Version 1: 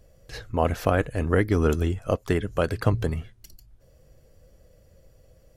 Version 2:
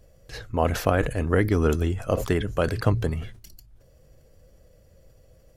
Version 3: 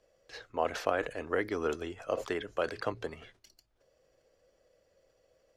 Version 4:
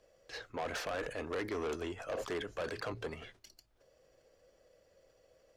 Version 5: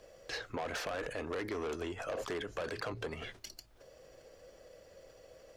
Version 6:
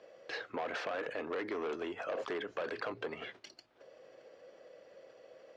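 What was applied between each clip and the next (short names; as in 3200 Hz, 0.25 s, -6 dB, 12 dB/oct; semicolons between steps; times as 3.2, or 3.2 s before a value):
sustainer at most 100 dB/s
three-band isolator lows -20 dB, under 320 Hz, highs -16 dB, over 7000 Hz; gain -6 dB
in parallel at +1.5 dB: limiter -24 dBFS, peak gain reduction 10.5 dB; on the sum: soft clip -28 dBFS, distortion -7 dB; gain -4.5 dB
compressor 4:1, threshold -48 dBFS, peak gain reduction 11 dB; gain +10 dB
BPF 240–3400 Hz; gain +1 dB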